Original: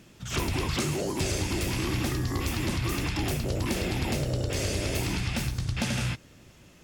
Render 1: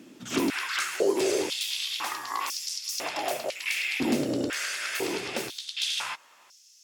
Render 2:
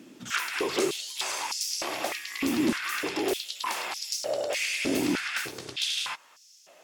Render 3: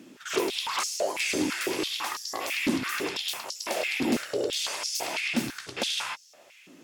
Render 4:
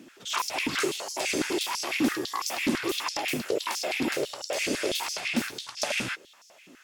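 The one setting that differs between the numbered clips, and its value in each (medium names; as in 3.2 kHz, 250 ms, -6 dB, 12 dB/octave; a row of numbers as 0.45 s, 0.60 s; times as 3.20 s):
step-sequenced high-pass, rate: 2 Hz, 3.3 Hz, 6 Hz, 12 Hz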